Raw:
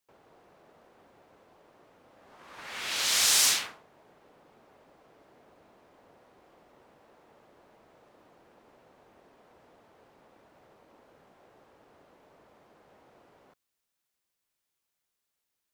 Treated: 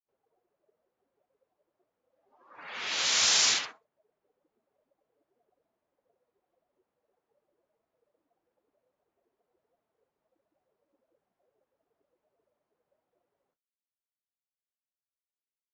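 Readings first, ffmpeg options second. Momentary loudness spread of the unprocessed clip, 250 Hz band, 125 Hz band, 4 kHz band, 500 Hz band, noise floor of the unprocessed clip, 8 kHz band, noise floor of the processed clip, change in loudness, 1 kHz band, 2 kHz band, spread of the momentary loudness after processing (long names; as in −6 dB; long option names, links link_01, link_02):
20 LU, −2.0 dB, can't be measured, +0.5 dB, −1.0 dB, −84 dBFS, −2.0 dB, below −85 dBFS, 0.0 dB, +0.5 dB, +0.5 dB, 19 LU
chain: -af "afftdn=noise_reduction=26:noise_floor=-45" -ar 16000 -c:a aac -b:a 24k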